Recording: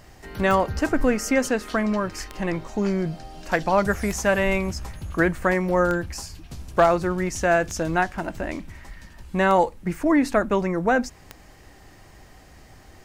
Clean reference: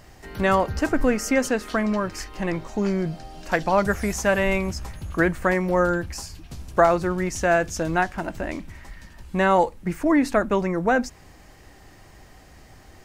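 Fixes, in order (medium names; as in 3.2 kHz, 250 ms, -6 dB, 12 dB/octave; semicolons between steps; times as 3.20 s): clip repair -8 dBFS; de-click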